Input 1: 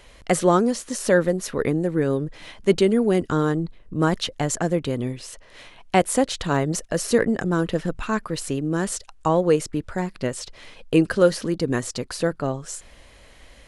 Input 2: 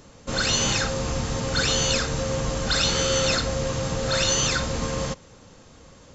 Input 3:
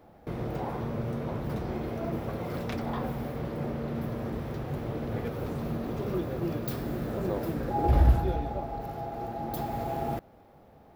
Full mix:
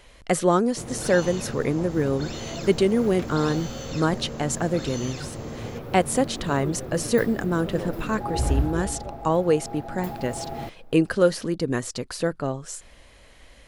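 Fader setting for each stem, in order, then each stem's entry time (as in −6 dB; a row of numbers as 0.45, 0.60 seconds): −2.0, −16.0, −2.0 decibels; 0.00, 0.65, 0.50 seconds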